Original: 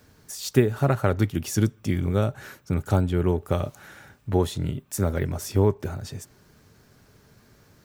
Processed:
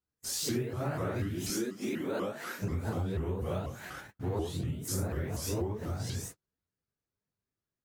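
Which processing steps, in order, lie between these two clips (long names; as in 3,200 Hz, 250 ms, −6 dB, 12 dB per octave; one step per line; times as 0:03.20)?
random phases in long frames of 200 ms
noise gate −46 dBFS, range −41 dB
0:01.50–0:02.62: high-pass filter 220 Hz 24 dB per octave
downward compressor 6 to 1, threshold −36 dBFS, peak gain reduction 21 dB
pitch modulation by a square or saw wave saw up 4.1 Hz, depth 250 cents
level +4.5 dB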